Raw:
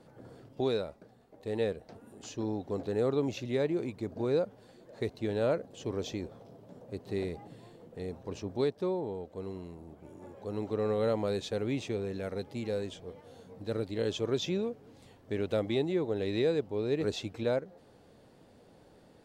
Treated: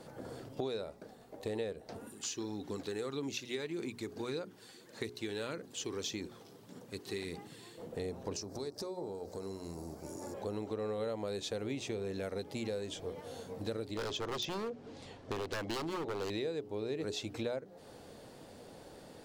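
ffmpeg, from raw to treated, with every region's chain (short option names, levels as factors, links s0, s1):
-filter_complex "[0:a]asettb=1/sr,asplit=3[s0][s1][s2];[s0]atrim=end=2.074[s3];[s1]atrim=start=2.07:end=7.78,asetpts=PTS-STARTPTS,afade=t=in:d=0.004:c=qsin,afade=t=out:st=5.706:d=0.004:c=qsin,highpass=f=310:p=1,equalizer=f=620:w=1.3:g=-15,aphaser=in_gain=1:out_gain=1:delay=2.7:decay=0.32:speed=1.7:type=sinusoidal[s4];[s2]atrim=start=7.776[s5];[s3][s4]acrossfade=d=0.004:c1=hsin:c2=qsin[s6];[s6][s5]acrossfade=d=0.004:c1=qsin:c2=hsin,asettb=1/sr,asplit=3[s7][s8][s9];[s7]atrim=end=8.364[s10];[s8]atrim=start=8.36:end=10.34,asetpts=PTS-STARTPTS,afade=t=in:d=0.004:c=qsin,afade=t=out:st=1.976:d=0.004:c=qsin,highshelf=f=4000:t=q:w=3:g=7,acompressor=threshold=0.00708:ratio=4:attack=3.2:release=140:knee=1:detection=peak,bandreject=f=92.97:t=h:w=4,bandreject=f=185.94:t=h:w=4,bandreject=f=278.91:t=h:w=4,bandreject=f=371.88:t=h:w=4,bandreject=f=464.85:t=h:w=4,bandreject=f=557.82:t=h:w=4,bandreject=f=650.79:t=h:w=4,bandreject=f=743.76:t=h:w=4,bandreject=f=836.73:t=h:w=4,bandreject=f=929.7:t=h:w=4,bandreject=f=1022.67:t=h:w=4,bandreject=f=1115.64:t=h:w=4,bandreject=f=1208.61:t=h:w=4,bandreject=f=1301.58:t=h:w=4,bandreject=f=1394.55:t=h:w=4,bandreject=f=1487.52:t=h:w=4[s11];[s9]atrim=start=10.336[s12];[s10][s11]acrossfade=d=0.004:c1=hsin:c2=qsin[s13];[s13][s12]acrossfade=d=0.004:c1=qsin:c2=hsin,asettb=1/sr,asplit=3[s14][s15][s16];[s14]atrim=end=13.974[s17];[s15]atrim=start=13.97:end=16.3,asetpts=PTS-STARTPTS,afade=t=in:d=0.004:c=qsin,afade=t=out:st=2.326:d=0.004:c=qsin,lowpass=5600,aeval=exprs='0.0335*(abs(mod(val(0)/0.0335+3,4)-2)-1)':c=same[s18];[s16]atrim=start=16.296[s19];[s17][s18]acrossfade=d=0.004:c1=hsin:c2=qsin[s20];[s20][s19]acrossfade=d=0.004:c1=qsin:c2=hsin,bass=f=250:g=-3,treble=f=4000:g=5,bandreject=f=60:t=h:w=6,bandreject=f=120:t=h:w=6,bandreject=f=180:t=h:w=6,bandreject=f=240:t=h:w=6,bandreject=f=300:t=h:w=6,bandreject=f=360:t=h:w=6,bandreject=f=420:t=h:w=6,acompressor=threshold=0.00708:ratio=5,volume=2.24"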